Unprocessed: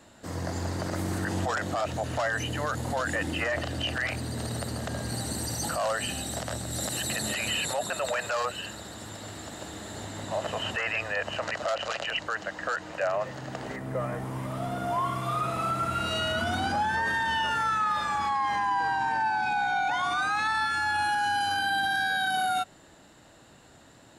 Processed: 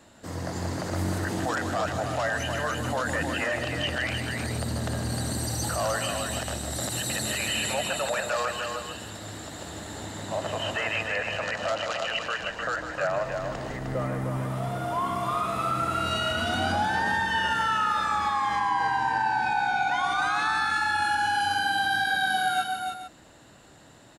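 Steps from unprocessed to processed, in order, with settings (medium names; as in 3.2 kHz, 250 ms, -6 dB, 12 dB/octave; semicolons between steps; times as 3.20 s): 12.39–13.96 s: octave divider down 2 oct, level -5 dB; multi-tap echo 153/307/445 ms -9/-5.5/-12 dB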